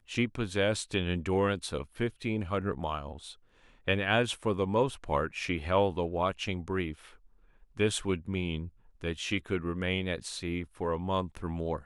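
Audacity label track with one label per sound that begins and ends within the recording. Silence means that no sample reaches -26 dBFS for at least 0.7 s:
3.880000	6.900000	sound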